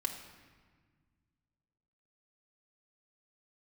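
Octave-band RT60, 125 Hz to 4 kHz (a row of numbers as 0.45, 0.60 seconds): 2.7, 2.4, 1.6, 1.5, 1.5, 1.1 seconds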